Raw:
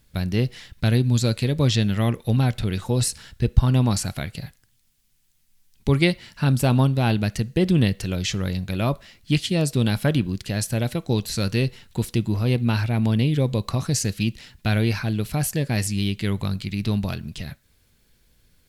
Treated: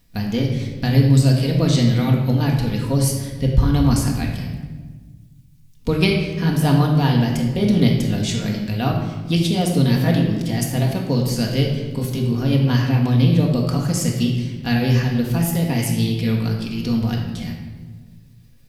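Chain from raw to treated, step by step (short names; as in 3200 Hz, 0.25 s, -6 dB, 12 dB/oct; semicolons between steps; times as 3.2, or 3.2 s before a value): delay-line pitch shifter +2 st; shoebox room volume 1100 m³, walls mixed, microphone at 1.8 m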